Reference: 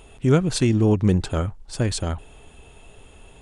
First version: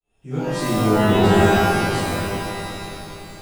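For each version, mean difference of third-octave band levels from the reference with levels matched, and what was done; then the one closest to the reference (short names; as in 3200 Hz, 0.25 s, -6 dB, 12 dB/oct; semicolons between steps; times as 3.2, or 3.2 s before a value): 15.0 dB: tremolo saw up 0.7 Hz, depth 100%; on a send: repeats that get brighter 0.189 s, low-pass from 200 Hz, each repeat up 1 oct, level -3 dB; on the sum: shimmer reverb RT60 1.3 s, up +12 st, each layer -2 dB, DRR -11 dB; gain -8 dB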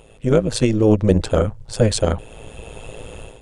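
4.0 dB: bell 510 Hz +13.5 dB 0.27 oct; AGC gain up to 13 dB; AM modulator 110 Hz, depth 65%; gain +1.5 dB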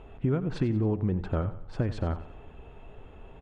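6.0 dB: LPF 1700 Hz 12 dB/oct; compressor 6:1, threshold -24 dBFS, peak gain reduction 12 dB; on a send: feedback echo 91 ms, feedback 42%, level -14 dB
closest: second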